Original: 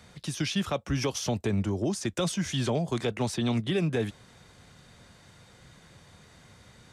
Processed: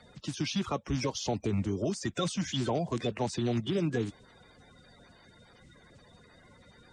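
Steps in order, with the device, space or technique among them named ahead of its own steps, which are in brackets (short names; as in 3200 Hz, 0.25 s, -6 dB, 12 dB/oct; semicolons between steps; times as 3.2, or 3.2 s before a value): clip after many re-uploads (LPF 8000 Hz 24 dB/oct; bin magnitudes rounded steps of 30 dB); gain -2 dB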